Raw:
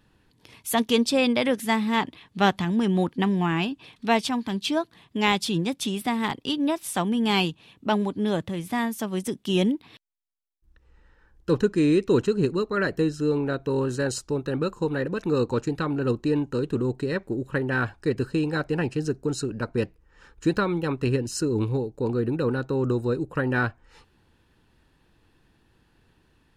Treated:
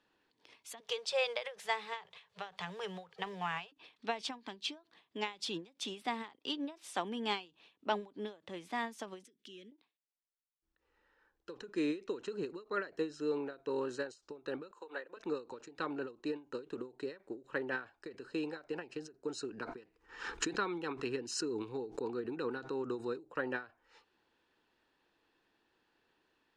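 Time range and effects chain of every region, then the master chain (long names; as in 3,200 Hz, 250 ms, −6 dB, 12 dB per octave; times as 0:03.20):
0:00.80–0:03.72: mu-law and A-law mismatch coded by mu + Chebyshev band-stop filter 180–420 Hz, order 3
0:09.24–0:09.72: downward compressor 4 to 1, threshold −39 dBFS + hard clipping −31 dBFS + Butterworth band-reject 820 Hz, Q 0.79
0:14.71–0:15.17: high-pass filter 520 Hz + parametric band 5,300 Hz −8.5 dB 0.33 octaves + transient designer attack +1 dB, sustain −3 dB
0:19.45–0:23.18: parametric band 570 Hz −12.5 dB 0.23 octaves + background raised ahead of every attack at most 65 dB per second
whole clip: three-way crossover with the lows and the highs turned down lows −21 dB, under 290 Hz, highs −23 dB, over 7,500 Hz; every ending faded ahead of time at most 200 dB per second; level −8 dB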